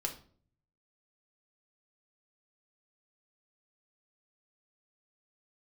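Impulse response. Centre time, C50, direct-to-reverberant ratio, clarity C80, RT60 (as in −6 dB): 15 ms, 11.0 dB, 1.0 dB, 16.0 dB, 0.50 s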